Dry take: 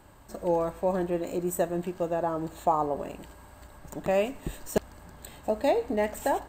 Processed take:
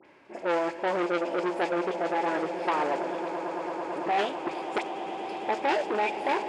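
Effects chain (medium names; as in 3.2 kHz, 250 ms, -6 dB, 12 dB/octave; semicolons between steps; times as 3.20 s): treble shelf 4.7 kHz -7 dB; in parallel at +1 dB: level held to a coarse grid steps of 16 dB; on the sum: short-mantissa float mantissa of 2-bit; phase dispersion highs, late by 52 ms, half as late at 1.9 kHz; formant shift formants +4 st; cabinet simulation 350–6200 Hz, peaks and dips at 350 Hz +7 dB, 700 Hz -3 dB, 1.2 kHz -10 dB, 2.5 kHz +6 dB, 3.8 kHz -7 dB, 5.8 kHz -7 dB; on a send: echo with a slow build-up 111 ms, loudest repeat 8, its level -16 dB; on the sum: transformer saturation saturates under 1.6 kHz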